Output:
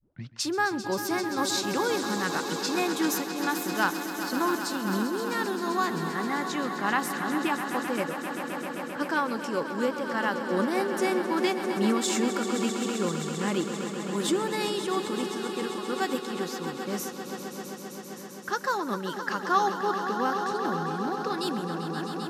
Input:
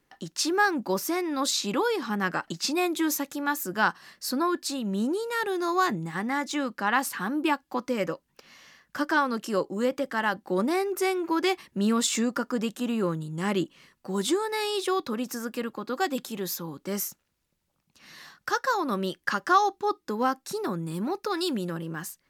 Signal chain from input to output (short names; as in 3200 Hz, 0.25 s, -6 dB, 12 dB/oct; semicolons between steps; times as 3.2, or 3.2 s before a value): tape start at the beginning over 0.34 s; low-pass opened by the level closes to 910 Hz, open at -25 dBFS; swelling echo 0.131 s, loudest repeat 5, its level -11.5 dB; noise-modulated level, depth 55%